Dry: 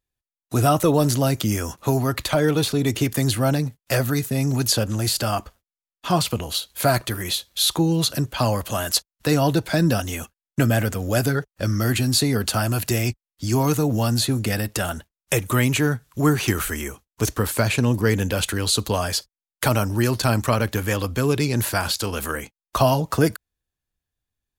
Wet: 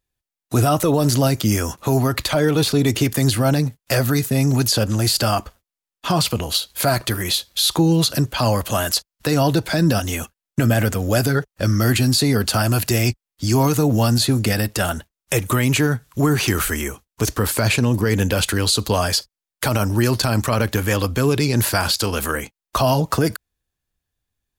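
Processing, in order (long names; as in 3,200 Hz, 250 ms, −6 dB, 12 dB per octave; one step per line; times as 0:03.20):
dynamic equaliser 4,800 Hz, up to +4 dB, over −42 dBFS, Q 4.6
brickwall limiter −12.5 dBFS, peak gain reduction 7 dB
level +4.5 dB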